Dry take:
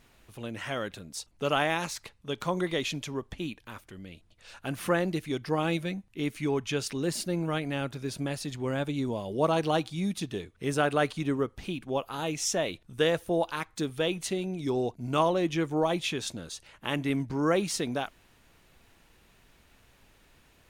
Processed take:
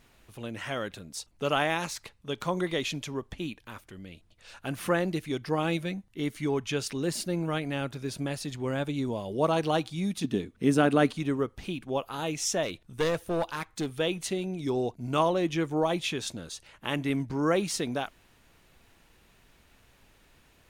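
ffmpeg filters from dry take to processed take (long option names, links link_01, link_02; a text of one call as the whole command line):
ffmpeg -i in.wav -filter_complex "[0:a]asettb=1/sr,asplit=3[link_01][link_02][link_03];[link_01]atrim=end=6.034[link_04];[link_02]atrim=start=6.03:end=6.54,asetpts=PTS-STARTPTS,afade=type=in:duration=0.004:curve=qsin,afade=type=out:start_time=0.506:duration=0.004:curve=qsin,bandreject=frequency=2500:width=8.2[link_05];[link_03]atrim=start=6.536[link_06];[link_04][link_05]acrossfade=duration=0.004:curve1=hsin:curve2=qsin[link_07];[link_07][link_06]acrossfade=duration=0.004:curve1=qsin:curve2=hsin,asettb=1/sr,asplit=3[link_08][link_09][link_10];[link_08]atrim=end=10.244[link_11];[link_09]atrim=start=10.24:end=11.17,asetpts=PTS-STARTPTS,afade=type=in:duration=0.004:curve=qsin,afade=type=out:start_time=0.926:duration=0.004:curve=qsin,equalizer=frequency=240:width=1.5:gain=12.5[link_12];[link_10]atrim=start=11.166[link_13];[link_11][link_12]acrossfade=duration=0.004:curve1=hsin:curve2=qsin[link_14];[link_14][link_13]acrossfade=duration=0.004:curve1=qsin:curve2=hsin,asettb=1/sr,asplit=3[link_15][link_16][link_17];[link_15]atrim=end=12.634[link_18];[link_16]atrim=start=12.63:end=13.96,asetpts=PTS-STARTPTS,afade=type=in:duration=0.004:curve=qsin,afade=type=out:start_time=1.326:duration=0.004:curve=qsin,aeval=exprs='clip(val(0),-1,0.0473)':channel_layout=same[link_19];[link_17]atrim=start=13.956[link_20];[link_18][link_19]acrossfade=duration=0.004:curve1=hsin:curve2=qsin[link_21];[link_21][link_20]acrossfade=duration=0.004:curve1=qsin:curve2=hsin" out.wav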